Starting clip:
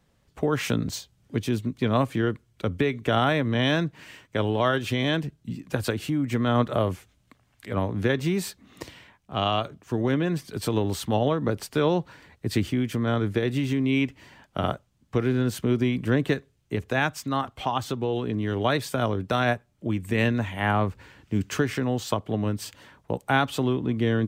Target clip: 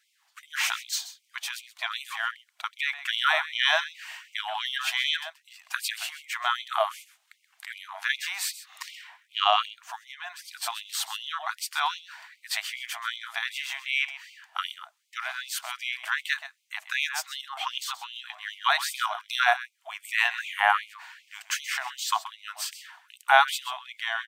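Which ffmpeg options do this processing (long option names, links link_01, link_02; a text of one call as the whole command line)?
ffmpeg -i in.wav -filter_complex "[0:a]lowshelf=frequency=400:gain=6.5,asettb=1/sr,asplit=3[link_01][link_02][link_03];[link_01]atrim=end=10.024[link_04];[link_02]atrim=start=10.02:end=10.67,asetpts=PTS-STARTPTS,afade=type=in:duration=0.004:curve=qsin,afade=type=out:start_time=0.646:duration=0.004:curve=qsin,acompressor=threshold=-27dB:ratio=2.5[link_05];[link_03]atrim=start=10.666[link_06];[link_04][link_05]acrossfade=duration=0.004:curve1=hsin:curve2=qsin[link_07];[link_07][link_06]acrossfade=duration=0.004:curve1=qsin:curve2=hsin,asplit=2[link_08][link_09];[link_09]aecho=0:1:129:0.2[link_10];[link_08][link_10]amix=inputs=2:normalize=0,afftfilt=real='re*gte(b*sr/1024,620*pow(2100/620,0.5+0.5*sin(2*PI*2.6*pts/sr)))':imag='im*gte(b*sr/1024,620*pow(2100/620,0.5+0.5*sin(2*PI*2.6*pts/sr)))':win_size=1024:overlap=0.75,volume=5dB" out.wav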